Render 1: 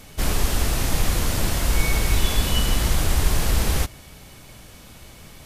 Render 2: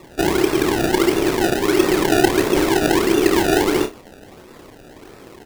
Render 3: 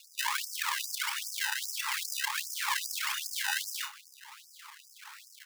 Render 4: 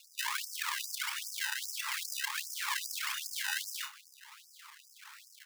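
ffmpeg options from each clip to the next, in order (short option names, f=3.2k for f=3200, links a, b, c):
-filter_complex "[0:a]aeval=exprs='val(0)*sin(2*PI*360*n/s)':c=same,acrusher=samples=28:mix=1:aa=0.000001:lfo=1:lforange=28:lforate=1.5,asplit=2[a][b];[b]aecho=0:1:30|60:0.398|0.158[c];[a][c]amix=inputs=2:normalize=0,volume=4dB"
-af "acompressor=threshold=-20dB:ratio=6,afreqshift=100,afftfilt=real='re*gte(b*sr/1024,790*pow(5000/790,0.5+0.5*sin(2*PI*2.5*pts/sr)))':imag='im*gte(b*sr/1024,790*pow(5000/790,0.5+0.5*sin(2*PI*2.5*pts/sr)))':win_size=1024:overlap=0.75"
-af "highpass=f=950:w=0.5412,highpass=f=950:w=1.3066,volume=-3dB"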